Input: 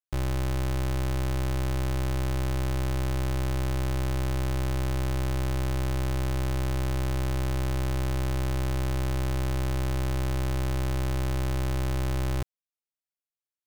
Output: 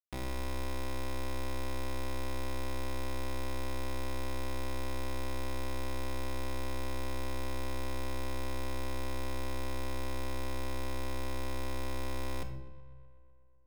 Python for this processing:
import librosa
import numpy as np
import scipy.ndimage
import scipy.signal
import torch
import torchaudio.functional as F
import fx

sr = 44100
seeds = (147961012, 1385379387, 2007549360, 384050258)

p1 = fx.low_shelf(x, sr, hz=110.0, db=-11.5)
p2 = fx.quant_companded(p1, sr, bits=4)
p3 = p2 + fx.echo_filtered(p2, sr, ms=125, feedback_pct=76, hz=4500.0, wet_db=-19.0, dry=0)
p4 = fx.room_shoebox(p3, sr, seeds[0], volume_m3=2300.0, walls='furnished', distance_m=1.8)
y = p4 * 10.0 ** (-4.5 / 20.0)